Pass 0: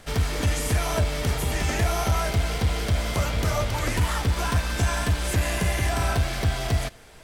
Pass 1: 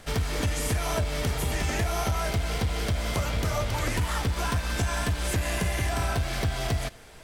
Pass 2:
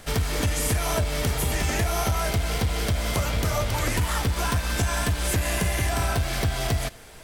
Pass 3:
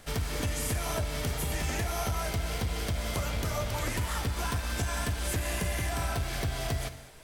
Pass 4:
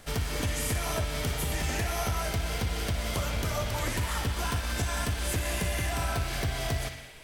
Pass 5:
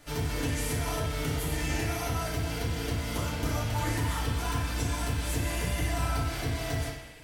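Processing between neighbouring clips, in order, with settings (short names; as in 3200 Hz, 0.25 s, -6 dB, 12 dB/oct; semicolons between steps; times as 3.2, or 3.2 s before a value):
compressor, threshold -23 dBFS, peak gain reduction 5.5 dB
high shelf 10000 Hz +7.5 dB; gain +2.5 dB
non-linear reverb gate 0.25 s flat, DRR 11 dB; gain -7 dB
narrowing echo 60 ms, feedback 80%, band-pass 2700 Hz, level -7.5 dB; gain +1 dB
FDN reverb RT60 0.5 s, low-frequency decay 1.3×, high-frequency decay 0.7×, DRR -4.5 dB; gain -7 dB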